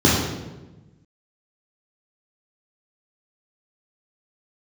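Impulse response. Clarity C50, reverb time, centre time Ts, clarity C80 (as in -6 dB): 1.0 dB, 1.1 s, 74 ms, 3.5 dB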